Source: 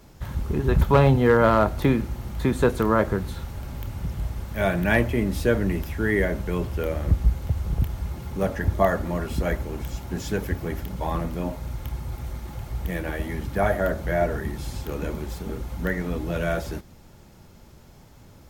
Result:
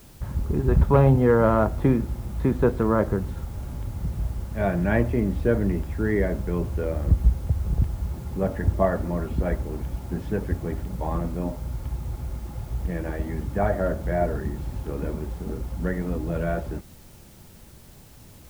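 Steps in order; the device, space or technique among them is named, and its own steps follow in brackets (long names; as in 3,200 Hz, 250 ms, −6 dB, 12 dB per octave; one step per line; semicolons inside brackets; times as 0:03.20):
cassette deck with a dirty head (head-to-tape spacing loss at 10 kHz 45 dB; tape wow and flutter 29 cents; white noise bed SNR 30 dB)
level +1.5 dB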